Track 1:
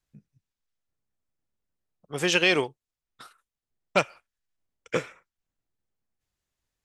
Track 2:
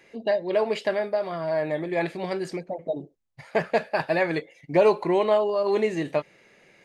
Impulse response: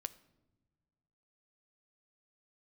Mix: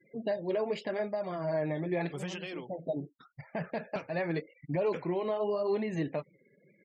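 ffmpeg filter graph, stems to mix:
-filter_complex "[0:a]acompressor=threshold=-28dB:ratio=10,flanger=delay=4.4:depth=9.5:regen=-77:speed=1.6:shape=triangular,volume=-2dB,asplit=2[link_01][link_02];[1:a]alimiter=limit=-18.5dB:level=0:latency=1:release=105,volume=-3dB[link_03];[link_02]apad=whole_len=301646[link_04];[link_03][link_04]sidechaincompress=threshold=-48dB:ratio=4:attack=16:release=150[link_05];[link_01][link_05]amix=inputs=2:normalize=0,equalizer=frequency=160:width_type=o:width=2.3:gain=7.5,afftfilt=real='re*gte(hypot(re,im),0.00398)':imag='im*gte(hypot(re,im),0.00398)':win_size=1024:overlap=0.75,flanger=delay=1:depth=6.6:regen=-45:speed=0.85:shape=sinusoidal"

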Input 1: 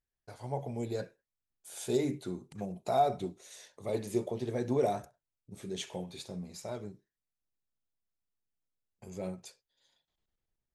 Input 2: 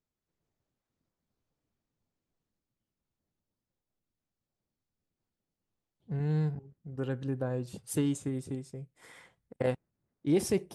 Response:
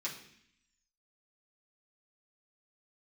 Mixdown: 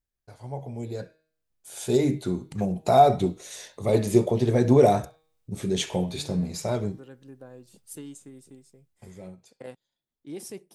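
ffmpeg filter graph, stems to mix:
-filter_complex "[0:a]bandreject=frequency=158:width_type=h:width=4,bandreject=frequency=316:width_type=h:width=4,bandreject=frequency=474:width_type=h:width=4,bandreject=frequency=632:width_type=h:width=4,bandreject=frequency=790:width_type=h:width=4,bandreject=frequency=948:width_type=h:width=4,bandreject=frequency=1106:width_type=h:width=4,bandreject=frequency=1264:width_type=h:width=4,bandreject=frequency=1422:width_type=h:width=4,bandreject=frequency=1580:width_type=h:width=4,bandreject=frequency=1738:width_type=h:width=4,bandreject=frequency=1896:width_type=h:width=4,bandreject=frequency=2054:width_type=h:width=4,bandreject=frequency=2212:width_type=h:width=4,bandreject=frequency=2370:width_type=h:width=4,bandreject=frequency=2528:width_type=h:width=4,bandreject=frequency=2686:width_type=h:width=4,bandreject=frequency=2844:width_type=h:width=4,bandreject=frequency=3002:width_type=h:width=4,bandreject=frequency=3160:width_type=h:width=4,bandreject=frequency=3318:width_type=h:width=4,bandreject=frequency=3476:width_type=h:width=4,bandreject=frequency=3634:width_type=h:width=4,bandreject=frequency=3792:width_type=h:width=4,bandreject=frequency=3950:width_type=h:width=4,bandreject=frequency=4108:width_type=h:width=4,bandreject=frequency=4266:width_type=h:width=4,bandreject=frequency=4424:width_type=h:width=4,bandreject=frequency=4582:width_type=h:width=4,bandreject=frequency=4740:width_type=h:width=4,dynaudnorm=framelen=360:gausssize=11:maxgain=13dB,volume=-1.5dB,afade=type=out:start_time=8.75:duration=0.39:silence=0.223872[link_01];[1:a]highpass=220,highshelf=frequency=4500:gain=10.5,volume=-12dB[link_02];[link_01][link_02]amix=inputs=2:normalize=0,lowshelf=frequency=160:gain=7.5"

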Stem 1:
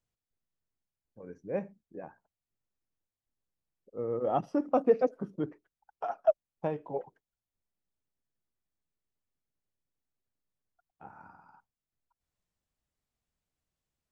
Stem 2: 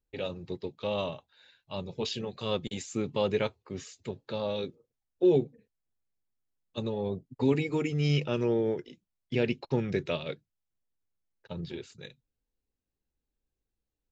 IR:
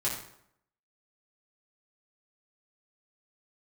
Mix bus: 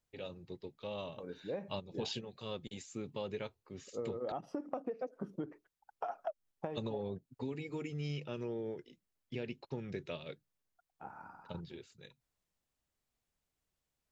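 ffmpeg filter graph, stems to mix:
-filter_complex "[0:a]lowshelf=frequency=220:gain=-4.5,acompressor=threshold=-33dB:ratio=2.5,volume=1.5dB,asplit=2[link_01][link_02];[1:a]volume=1dB,asplit=3[link_03][link_04][link_05];[link_03]atrim=end=4.32,asetpts=PTS-STARTPTS,afade=type=out:start_time=4.316:duration=0.004:curve=hsin[link_06];[link_04]atrim=start=4.32:end=5.87,asetpts=PTS-STARTPTS,volume=0[link_07];[link_05]atrim=start=5.87,asetpts=PTS-STARTPTS,afade=type=in:duration=0.004:curve=hsin[link_08];[link_06][link_07][link_08]concat=n=3:v=0:a=1[link_09];[link_02]apad=whole_len=622335[link_10];[link_09][link_10]sidechaingate=range=-11dB:threshold=-56dB:ratio=16:detection=peak[link_11];[link_01][link_11]amix=inputs=2:normalize=0,acompressor=threshold=-35dB:ratio=12"

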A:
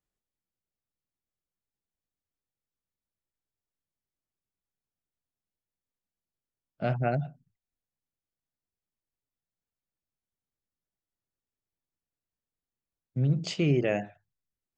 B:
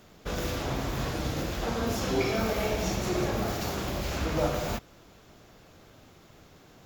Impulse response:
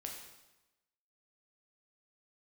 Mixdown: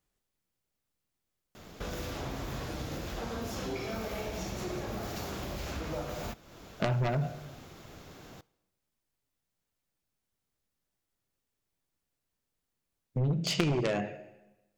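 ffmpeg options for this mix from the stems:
-filter_complex "[0:a]acompressor=threshold=-31dB:ratio=3,volume=1.5dB,asplit=2[link_01][link_02];[link_02]volume=-3dB[link_03];[1:a]acompressor=threshold=-44dB:ratio=2.5,adelay=1550,volume=0.5dB,asplit=2[link_04][link_05];[link_05]volume=-15.5dB[link_06];[2:a]atrim=start_sample=2205[link_07];[link_03][link_06]amix=inputs=2:normalize=0[link_08];[link_08][link_07]afir=irnorm=-1:irlink=0[link_09];[link_01][link_04][link_09]amix=inputs=3:normalize=0,aeval=exprs='0.158*(cos(1*acos(clip(val(0)/0.158,-1,1)))-cos(1*PI/2))+0.0708*(cos(2*acos(clip(val(0)/0.158,-1,1)))-cos(2*PI/2))+0.0447*(cos(3*acos(clip(val(0)/0.158,-1,1)))-cos(3*PI/2))+0.02*(cos(4*acos(clip(val(0)/0.158,-1,1)))-cos(4*PI/2))+0.0398*(cos(5*acos(clip(val(0)/0.158,-1,1)))-cos(5*PI/2))':channel_layout=same"

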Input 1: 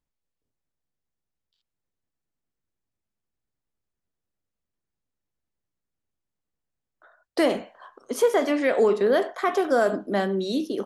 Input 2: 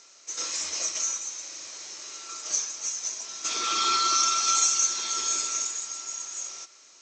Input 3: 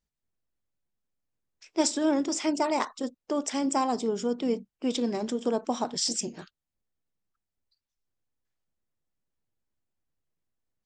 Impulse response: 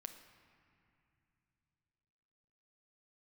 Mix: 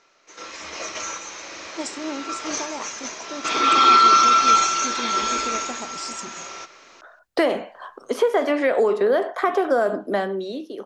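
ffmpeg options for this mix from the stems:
-filter_complex "[0:a]acrossover=split=380|3900[link_01][link_02][link_03];[link_01]acompressor=threshold=-41dB:ratio=4[link_04];[link_02]acompressor=threshold=-26dB:ratio=4[link_05];[link_03]acompressor=threshold=-55dB:ratio=4[link_06];[link_04][link_05][link_06]amix=inputs=3:normalize=0,adynamicequalizer=threshold=0.00631:dfrequency=1800:dqfactor=0.7:tfrequency=1800:tqfactor=0.7:attack=5:release=100:ratio=0.375:range=3:mode=cutabove:tftype=highshelf,volume=-3.5dB[link_07];[1:a]lowpass=2300,volume=2.5dB,asplit=2[link_08][link_09];[link_09]volume=-23.5dB[link_10];[2:a]volume=-18dB[link_11];[link_10]aecho=0:1:182:1[link_12];[link_07][link_08][link_11][link_12]amix=inputs=4:normalize=0,dynaudnorm=framelen=190:gausssize=9:maxgain=12dB"

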